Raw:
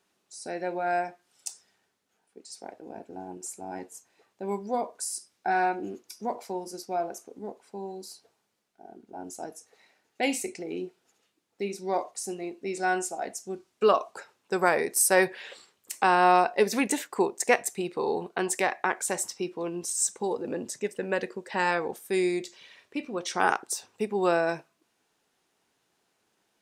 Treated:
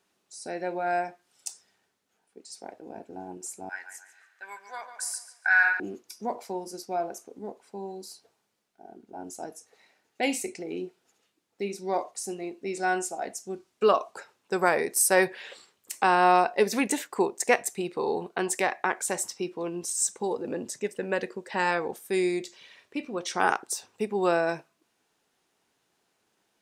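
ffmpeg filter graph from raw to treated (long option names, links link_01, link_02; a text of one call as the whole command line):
ffmpeg -i in.wav -filter_complex "[0:a]asettb=1/sr,asplit=3[link_01][link_02][link_03];[link_01]atrim=end=3.694[link_04];[link_02]atrim=start=3.69:end=5.8,asetpts=PTS-STARTPTS,afade=type=in:duration=0.004:curve=qsin,afade=type=out:start_time=2.106:duration=0.004:curve=qsin,highpass=frequency=1600:width_type=q:width=6.1,asplit=2[link_05][link_06];[link_06]adelay=144,lowpass=frequency=3900:poles=1,volume=-9dB,asplit=2[link_07][link_08];[link_08]adelay=144,lowpass=frequency=3900:poles=1,volume=0.42,asplit=2[link_09][link_10];[link_10]adelay=144,lowpass=frequency=3900:poles=1,volume=0.42,asplit=2[link_11][link_12];[link_12]adelay=144,lowpass=frequency=3900:poles=1,volume=0.42,asplit=2[link_13][link_14];[link_14]adelay=144,lowpass=frequency=3900:poles=1,volume=0.42[link_15];[link_05][link_07][link_09][link_11][link_13][link_15]amix=inputs=6:normalize=0,atrim=end_sample=93051[link_16];[link_03]atrim=start=5.796[link_17];[link_04][link_16]acrossfade=duration=0.004:curve1=hsin:curve2=qsin[link_18];[link_18][link_17]acrossfade=duration=0.004:curve1=qsin:curve2=hsin" out.wav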